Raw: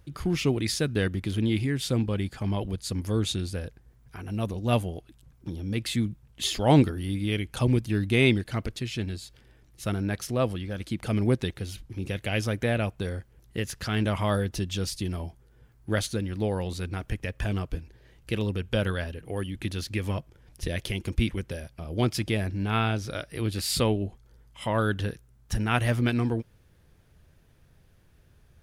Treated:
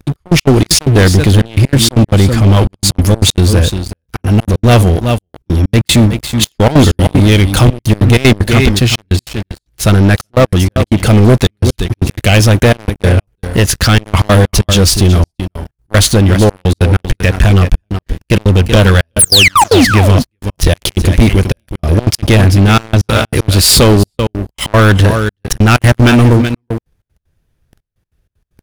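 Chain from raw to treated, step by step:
sound drawn into the spectrogram fall, 0:19.19–0:19.85, 220–11,000 Hz −24 dBFS
bass and treble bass −3 dB, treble +2 dB
on a send: single-tap delay 377 ms −12 dB
on the sum: gate pattern "xx..x.xx.x.xxxxx" 191 BPM −24 dB
low-shelf EQ 140 Hz +10 dB
leveller curve on the samples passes 5
level +4.5 dB

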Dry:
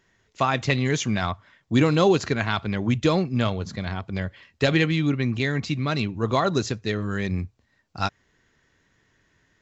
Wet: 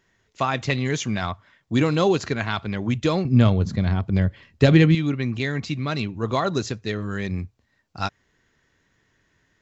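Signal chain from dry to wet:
0:03.25–0:04.95: low-shelf EQ 400 Hz +11.5 dB
level −1 dB

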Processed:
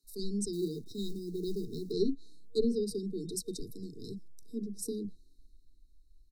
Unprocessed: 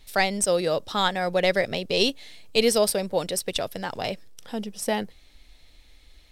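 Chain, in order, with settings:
drawn EQ curve 350 Hz 0 dB, 840 Hz −27 dB, 13,000 Hz −6 dB
treble cut that deepens with the level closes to 550 Hz, closed at −16.5 dBFS
parametric band 65 Hz −10.5 dB 2.1 octaves
multiband delay without the direct sound highs, lows 30 ms, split 230 Hz
in parallel at −3 dB: downward compressor, threshold −33 dBFS, peak gain reduction 9.5 dB
0:00.53–0:01.92: on the sum: log-companded quantiser 6 bits
brick-wall band-stop 470–3,700 Hz
multiband upward and downward expander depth 40%
level −3 dB

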